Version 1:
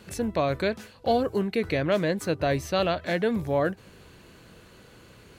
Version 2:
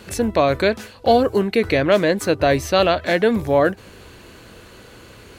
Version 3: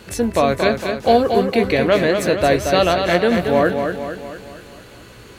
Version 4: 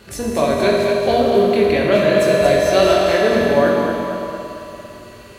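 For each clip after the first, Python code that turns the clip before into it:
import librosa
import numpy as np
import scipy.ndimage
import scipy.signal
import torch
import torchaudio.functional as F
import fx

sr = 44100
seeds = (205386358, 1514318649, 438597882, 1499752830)

y1 = fx.peak_eq(x, sr, hz=160.0, db=-7.0, octaves=0.55)
y1 = y1 * librosa.db_to_amplitude(9.0)
y2 = fx.doubler(y1, sr, ms=17.0, db=-12)
y2 = fx.echo_feedback(y2, sr, ms=229, feedback_pct=52, wet_db=-6.0)
y3 = fx.doubler(y2, sr, ms=21.0, db=-10.5)
y3 = fx.rev_fdn(y3, sr, rt60_s=2.9, lf_ratio=1.0, hf_ratio=0.95, size_ms=15.0, drr_db=-2.5)
y3 = y3 * librosa.db_to_amplitude(-4.0)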